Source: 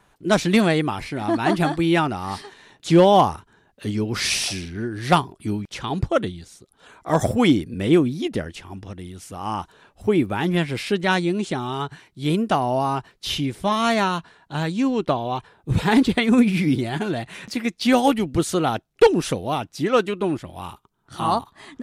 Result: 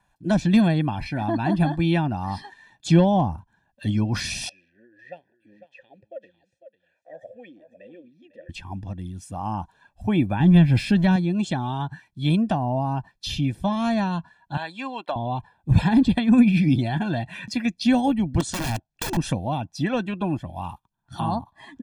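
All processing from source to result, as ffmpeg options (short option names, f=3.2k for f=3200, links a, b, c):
-filter_complex "[0:a]asettb=1/sr,asplit=3[a][b][c];[a]atrim=end=4.494[d];[b]atrim=start=4.49:end=8.49,asetpts=PTS-STARTPTS,afade=t=in:d=0.004:c=qsin,afade=t=out:st=3.996:d=0.004:c=qsin,acompressor=threshold=-32dB:ratio=2:attack=3.2:release=140:knee=1:detection=peak,asplit=3[e][f][g];[e]bandpass=f=530:t=q:w=8,volume=0dB[h];[f]bandpass=f=1.84k:t=q:w=8,volume=-6dB[i];[g]bandpass=f=2.48k:t=q:w=8,volume=-9dB[j];[h][i][j]amix=inputs=3:normalize=0,aecho=1:1:500:0.316,atrim=end_sample=176400[k];[c]atrim=start=8.486[l];[d][k]acrossfade=d=0.004:c1=hsin:c2=qsin[m];[m][l]acrossfade=d=0.004:c1=qsin:c2=hsin,asettb=1/sr,asplit=3[n][o][p];[n]atrim=end=10.404[q];[o]atrim=start=10.4:end=11.16,asetpts=PTS-STARTPTS,afade=t=in:d=0.004:c=qsin,afade=t=out:st=0.756:d=0.004:c=qsin,aeval=exprs='val(0)+0.5*0.0188*sgn(val(0))':c=same,lowshelf=f=210:g=9.5[r];[p]atrim=start=11.156[s];[q][r]acrossfade=d=0.004:c1=hsin:c2=qsin[t];[t][s]acrossfade=d=0.004:c1=qsin:c2=hsin,asettb=1/sr,asplit=3[u][v][w];[u]atrim=end=14.574[x];[v]atrim=start=14.57:end=15.16,asetpts=PTS-STARTPTS,afade=t=in:d=0.004:c=qsin,afade=t=out:st=0.586:d=0.004:c=qsin,highpass=620,equalizer=f=6.1k:w=6.4:g=-13.5,asoftclip=type=hard:threshold=-13.5dB[y];[w]atrim=start=15.156[z];[x][y]acrossfade=d=0.004:c1=hsin:c2=qsin[aa];[aa][z]acrossfade=d=0.004:c1=qsin:c2=hsin,asettb=1/sr,asplit=3[ab][ac][ad];[ab]atrim=end=18.404[ae];[ac]atrim=start=18.4:end=19.17,asetpts=PTS-STARTPTS,afade=t=in:d=0.004:c=qsin,afade=t=out:st=0.766:d=0.004:c=qsin,lowpass=f=8.7k:w=0.5412,lowpass=f=8.7k:w=1.3066,adynamicequalizer=threshold=0.00794:dfrequency=160:dqfactor=3:tfrequency=160:tqfactor=3:attack=5:release=100:ratio=0.375:range=3:mode=cutabove:tftype=bell,aeval=exprs='(mod(7.5*val(0)+1,2)-1)/7.5':c=same[af];[ad]atrim=start=19.166[ag];[ae][af]acrossfade=d=0.004:c1=hsin:c2=qsin[ah];[ah][ag]acrossfade=d=0.004:c1=qsin:c2=hsin,afftdn=nr=12:nf=-41,aecho=1:1:1.2:0.77,acrossover=split=460[ai][aj];[aj]acompressor=threshold=-29dB:ratio=5[ak];[ai][ak]amix=inputs=2:normalize=0"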